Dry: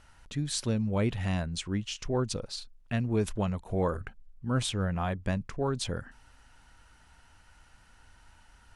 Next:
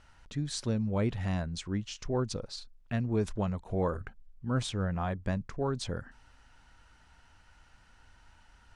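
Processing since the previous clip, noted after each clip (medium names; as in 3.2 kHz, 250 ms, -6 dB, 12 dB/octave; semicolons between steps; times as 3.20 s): low-pass 7.1 kHz 12 dB/octave; dynamic bell 2.8 kHz, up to -5 dB, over -55 dBFS, Q 1.7; trim -1.5 dB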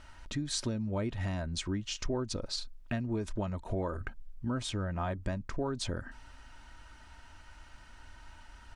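compression 5:1, threshold -36 dBFS, peak gain reduction 11.5 dB; comb 3.2 ms, depth 39%; trim +5.5 dB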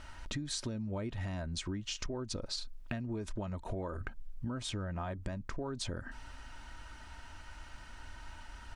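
compression 5:1, threshold -39 dBFS, peak gain reduction 10.5 dB; trim +3.5 dB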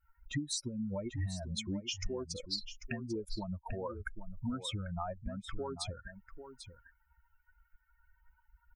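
expander on every frequency bin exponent 3; delay 793 ms -11 dB; trim +6.5 dB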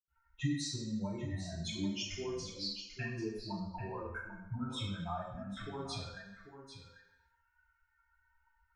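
reverberation RT60 0.95 s, pre-delay 77 ms; trim +9 dB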